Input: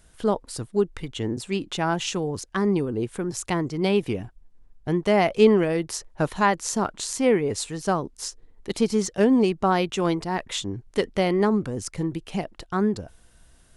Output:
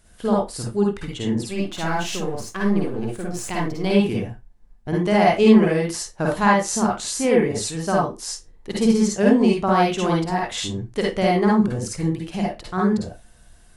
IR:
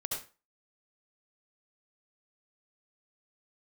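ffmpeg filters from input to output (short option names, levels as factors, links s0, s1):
-filter_complex "[0:a]asplit=3[s0][s1][s2];[s0]afade=t=out:st=1.45:d=0.02[s3];[s1]aeval=exprs='if(lt(val(0),0),0.447*val(0),val(0))':c=same,afade=t=in:st=1.45:d=0.02,afade=t=out:st=3.85:d=0.02[s4];[s2]afade=t=in:st=3.85:d=0.02[s5];[s3][s4][s5]amix=inputs=3:normalize=0[s6];[1:a]atrim=start_sample=2205,asetrate=61740,aresample=44100[s7];[s6][s7]afir=irnorm=-1:irlink=0,volume=1.58"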